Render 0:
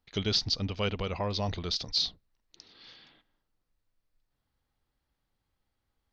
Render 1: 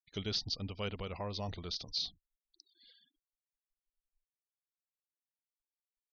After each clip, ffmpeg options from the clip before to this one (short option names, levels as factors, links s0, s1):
-af "afftfilt=real='re*gte(hypot(re,im),0.00398)':imag='im*gte(hypot(re,im),0.00398)':win_size=1024:overlap=0.75,volume=0.398"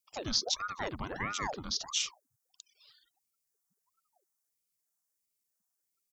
-af "firequalizer=gain_entry='entry(130,0);entry(210,-20);entry(920,5);entry(2700,-11);entry(6200,9)':delay=0.05:min_phase=1,aeval=exprs='val(0)*sin(2*PI*730*n/s+730*0.85/1.5*sin(2*PI*1.5*n/s))':c=same,volume=2.51"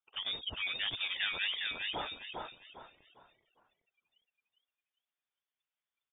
-filter_complex "[0:a]asplit=2[s0][s1];[s1]asplit=4[s2][s3][s4][s5];[s2]adelay=404,afreqshift=-40,volume=0.668[s6];[s3]adelay=808,afreqshift=-80,volume=0.214[s7];[s4]adelay=1212,afreqshift=-120,volume=0.0684[s8];[s5]adelay=1616,afreqshift=-160,volume=0.0219[s9];[s6][s7][s8][s9]amix=inputs=4:normalize=0[s10];[s0][s10]amix=inputs=2:normalize=0,lowpass=f=3100:t=q:w=0.5098,lowpass=f=3100:t=q:w=0.6013,lowpass=f=3100:t=q:w=0.9,lowpass=f=3100:t=q:w=2.563,afreqshift=-3700"